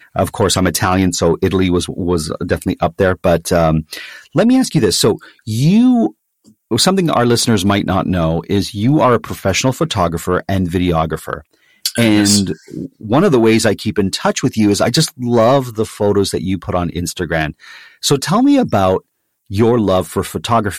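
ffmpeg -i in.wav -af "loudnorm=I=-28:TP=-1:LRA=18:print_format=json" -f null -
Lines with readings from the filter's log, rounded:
"input_i" : "-14.8",
"input_tp" : "-3.0",
"input_lra" : "2.3",
"input_thresh" : "-25.1",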